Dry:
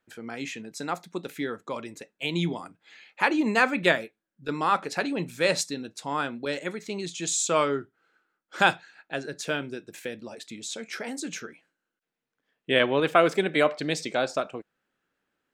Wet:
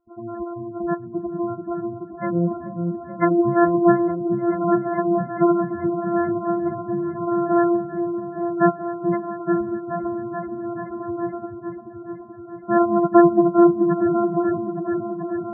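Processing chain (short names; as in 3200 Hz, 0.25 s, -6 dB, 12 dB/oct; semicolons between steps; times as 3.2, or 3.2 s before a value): sample sorter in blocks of 128 samples; LPF 3100 Hz 12 dB/oct; spectral gate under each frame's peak -10 dB strong; on a send: repeats that get brighter 0.432 s, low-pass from 400 Hz, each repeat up 1 oct, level -3 dB; on the sum: gain +7.5 dB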